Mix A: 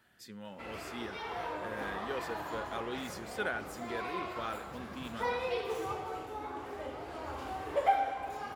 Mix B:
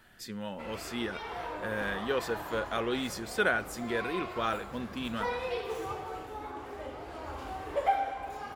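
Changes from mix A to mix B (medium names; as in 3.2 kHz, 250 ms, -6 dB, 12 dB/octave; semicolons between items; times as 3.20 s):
speech +8.0 dB; master: remove high-pass 71 Hz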